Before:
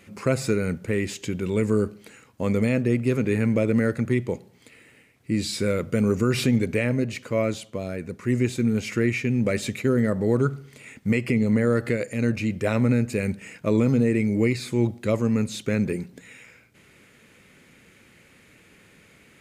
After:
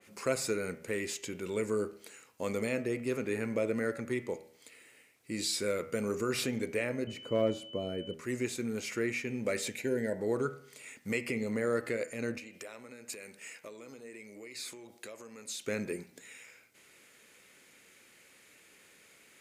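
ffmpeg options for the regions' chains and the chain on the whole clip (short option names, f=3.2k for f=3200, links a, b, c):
-filter_complex "[0:a]asettb=1/sr,asplit=3[a][b][c];[a]atrim=end=7.074[d];[b]atrim=start=7.07:end=8.14,asetpts=PTS-STARTPTS,afade=t=in:d=0.004:c=qsin,afade=t=out:st=1.066:d=0.004:c=qsin,tiltshelf=f=790:g=9,asoftclip=type=hard:threshold=-9dB,aeval=exprs='val(0)+0.01*sin(2*PI*3000*n/s)':c=same[e];[c]atrim=start=8.136[f];[d][e]acrossfade=d=0.004:c1=hsin:c2=qsin[g];[g][f]acrossfade=d=0.004:c1=qsin:c2=hsin,asettb=1/sr,asplit=3[h][i][j];[h]atrim=end=9.674[k];[i]atrim=start=9.67:end=10.2,asetpts=PTS-STARTPTS,afade=t=in:d=0.004:c=qsin,afade=t=out:st=0.526:d=0.004:c=qsin,acompressor=mode=upward:threshold=-28dB:ratio=2.5:attack=3.2:release=140:knee=2.83:detection=peak,asuperstop=centerf=1200:order=12:qfactor=3[l];[j]atrim=start=10.196[m];[k][l]acrossfade=d=0.004:c1=hsin:c2=qsin[n];[n][m]acrossfade=d=0.004:c1=qsin:c2=hsin,asettb=1/sr,asplit=3[o][p][q];[o]atrim=end=12.384[r];[p]atrim=start=12.38:end=15.65,asetpts=PTS-STARTPTS,afade=t=in:d=0.004:c=qsin,afade=t=out:st=3.266:d=0.004:c=qsin,highpass=f=460:p=1,acompressor=threshold=-34dB:ratio=16:attack=3.2:release=140:knee=1:detection=peak[s];[q]atrim=start=15.646[t];[r][s]acrossfade=d=0.004:c1=hsin:c2=qsin[u];[u][t]acrossfade=d=0.004:c1=qsin:c2=hsin,bass=f=250:g=-14,treble=f=4k:g=7,bandreject=f=80.23:t=h:w=4,bandreject=f=160.46:t=h:w=4,bandreject=f=240.69:t=h:w=4,bandreject=f=320.92:t=h:w=4,bandreject=f=401.15:t=h:w=4,bandreject=f=481.38:t=h:w=4,bandreject=f=561.61:t=h:w=4,bandreject=f=641.84:t=h:w=4,bandreject=f=722.07:t=h:w=4,bandreject=f=802.3:t=h:w=4,bandreject=f=882.53:t=h:w=4,bandreject=f=962.76:t=h:w=4,bandreject=f=1.04299k:t=h:w=4,bandreject=f=1.12322k:t=h:w=4,bandreject=f=1.20345k:t=h:w=4,bandreject=f=1.28368k:t=h:w=4,bandreject=f=1.36391k:t=h:w=4,bandreject=f=1.44414k:t=h:w=4,bandreject=f=1.52437k:t=h:w=4,bandreject=f=1.6046k:t=h:w=4,bandreject=f=1.68483k:t=h:w=4,bandreject=f=1.76506k:t=h:w=4,bandreject=f=1.84529k:t=h:w=4,bandreject=f=1.92552k:t=h:w=4,bandreject=f=2.00575k:t=h:w=4,bandreject=f=2.08598k:t=h:w=4,bandreject=f=2.16621k:t=h:w=4,bandreject=f=2.24644k:t=h:w=4,bandreject=f=2.32667k:t=h:w=4,bandreject=f=2.4069k:t=h:w=4,bandreject=f=2.48713k:t=h:w=4,bandreject=f=2.56736k:t=h:w=4,bandreject=f=2.64759k:t=h:w=4,bandreject=f=2.72782k:t=h:w=4,bandreject=f=2.80805k:t=h:w=4,bandreject=f=2.88828k:t=h:w=4,bandreject=f=2.96851k:t=h:w=4,bandreject=f=3.04874k:t=h:w=4,bandreject=f=3.12897k:t=h:w=4,adynamicequalizer=threshold=0.00708:dfrequency=2400:dqfactor=0.7:tfrequency=2400:tqfactor=0.7:attack=5:release=100:ratio=0.375:range=3:mode=cutabove:tftype=highshelf,volume=-5.5dB"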